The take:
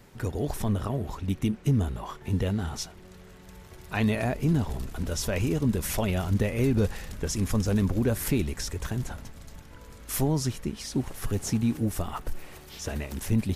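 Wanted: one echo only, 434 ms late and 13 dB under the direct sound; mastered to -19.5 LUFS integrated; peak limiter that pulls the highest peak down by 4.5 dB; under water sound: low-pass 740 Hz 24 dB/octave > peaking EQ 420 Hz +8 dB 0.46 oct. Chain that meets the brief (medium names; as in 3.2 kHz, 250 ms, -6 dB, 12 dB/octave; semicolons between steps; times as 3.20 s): peak limiter -19 dBFS; low-pass 740 Hz 24 dB/octave; peaking EQ 420 Hz +8 dB 0.46 oct; delay 434 ms -13 dB; trim +10.5 dB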